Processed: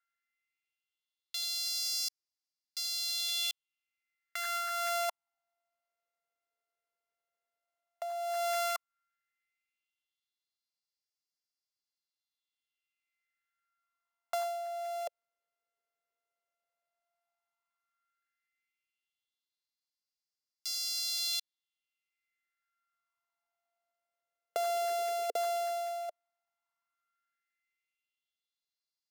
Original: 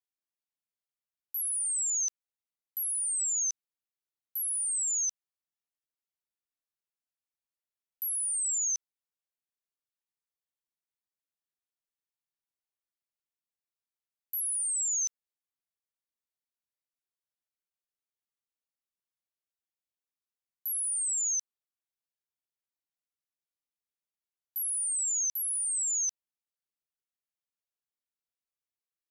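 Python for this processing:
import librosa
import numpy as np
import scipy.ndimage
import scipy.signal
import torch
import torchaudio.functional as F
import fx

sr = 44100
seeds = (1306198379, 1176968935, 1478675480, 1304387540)

y = np.r_[np.sort(x[:len(x) // 64 * 64].reshape(-1, 64), axis=1).ravel(), x[len(x) // 64 * 64:]]
y = fx.filter_lfo_highpass(y, sr, shape='sine', hz=0.11, low_hz=450.0, high_hz=4900.0, q=4.1)
y = fx.over_compress(y, sr, threshold_db=-29.0, ratio=-1.0)
y = fx.dynamic_eq(y, sr, hz=1600.0, q=0.75, threshold_db=-42.0, ratio=4.0, max_db=-7)
y = F.gain(torch.from_numpy(y), -2.0).numpy()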